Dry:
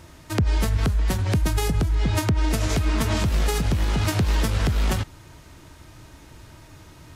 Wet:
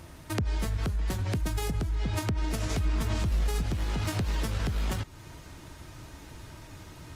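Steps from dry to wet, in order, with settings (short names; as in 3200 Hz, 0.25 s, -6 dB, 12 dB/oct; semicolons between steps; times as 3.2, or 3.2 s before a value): 2.78–3.64 low shelf 62 Hz +10.5 dB; compressor 2:1, threshold -33 dBFS, peak gain reduction 11.5 dB; Opus 32 kbps 48000 Hz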